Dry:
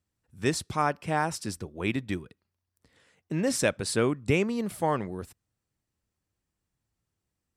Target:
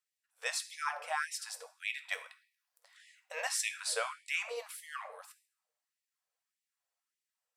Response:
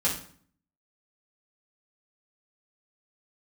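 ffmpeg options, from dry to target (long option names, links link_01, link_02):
-filter_complex "[0:a]asettb=1/sr,asplit=3[link_01][link_02][link_03];[link_01]atrim=end=2.114[link_04];[link_02]atrim=start=2.11:end=3.47,asetpts=PTS-STARTPTS,afade=type=in:duration=0.004:curve=qsin,afade=type=out:start_time=1.356:duration=0.004:curve=qsin,acontrast=89[link_05];[link_03]atrim=start=3.466[link_06];[link_04][link_05]acrossfade=duration=0.004:curve1=hsin:curve2=qsin[link_07];[link_07][link_06]acrossfade=duration=0.004:curve1=qsin:curve2=hsin,asplit=2[link_08][link_09];[1:a]atrim=start_sample=2205,asetrate=36162,aresample=44100,lowshelf=frequency=410:gain=11[link_10];[link_09][link_10]afir=irnorm=-1:irlink=0,volume=-16.5dB[link_11];[link_08][link_11]amix=inputs=2:normalize=0,afftfilt=real='re*gte(b*sr/1024,440*pow(1800/440,0.5+0.5*sin(2*PI*1.7*pts/sr)))':imag='im*gte(b*sr/1024,440*pow(1800/440,0.5+0.5*sin(2*PI*1.7*pts/sr)))':win_size=1024:overlap=0.75,volume=-4.5dB"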